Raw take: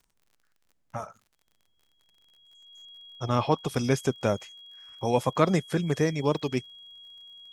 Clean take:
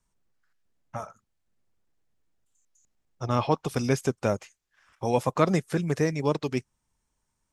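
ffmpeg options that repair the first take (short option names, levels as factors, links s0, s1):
-af "adeclick=t=4,bandreject=f=3300:w=30"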